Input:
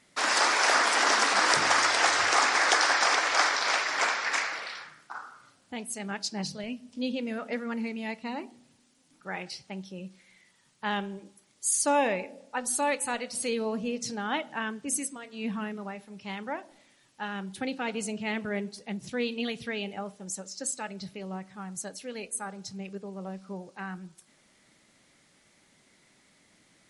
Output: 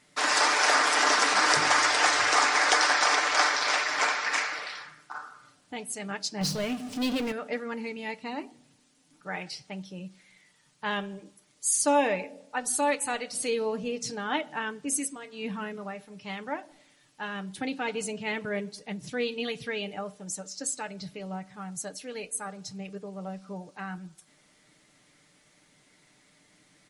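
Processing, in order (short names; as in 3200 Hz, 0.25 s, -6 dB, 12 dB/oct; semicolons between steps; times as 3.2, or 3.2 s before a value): 6.41–7.32 power-law curve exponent 0.5; comb 6.7 ms, depth 46%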